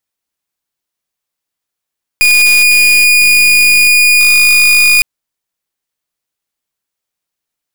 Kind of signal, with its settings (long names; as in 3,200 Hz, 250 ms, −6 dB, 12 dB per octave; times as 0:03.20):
pulse wave 2,450 Hz, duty 37% −7 dBFS 2.81 s